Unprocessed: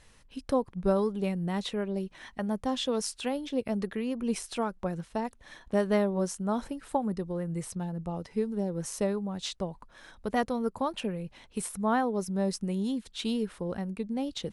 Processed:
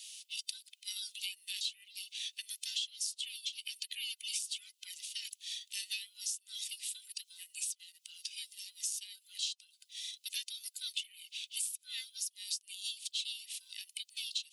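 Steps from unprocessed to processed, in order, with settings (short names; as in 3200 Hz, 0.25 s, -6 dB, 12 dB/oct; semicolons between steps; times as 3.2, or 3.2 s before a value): band inversion scrambler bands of 500 Hz; steep high-pass 2800 Hz 48 dB/oct; compressor 6:1, threshold -53 dBFS, peak gain reduction 20 dB; gain +16.5 dB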